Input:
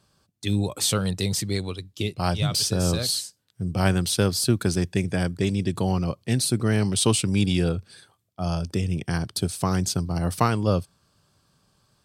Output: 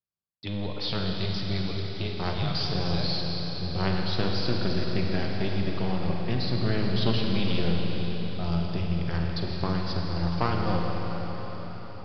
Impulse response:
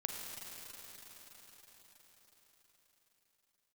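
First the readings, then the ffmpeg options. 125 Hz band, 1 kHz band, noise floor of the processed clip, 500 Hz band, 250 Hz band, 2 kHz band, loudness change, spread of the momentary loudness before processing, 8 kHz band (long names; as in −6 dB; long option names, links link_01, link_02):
−4.0 dB, −2.5 dB, −36 dBFS, −4.0 dB, −4.0 dB, −2.5 dB, −4.5 dB, 7 LU, below −25 dB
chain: -filter_complex "[0:a]agate=range=-31dB:threshold=-56dB:ratio=16:detection=peak,aresample=11025,aeval=exprs='clip(val(0),-1,0.0668)':channel_layout=same,aresample=44100[link_01];[1:a]atrim=start_sample=2205[link_02];[link_01][link_02]afir=irnorm=-1:irlink=0,volume=-3dB"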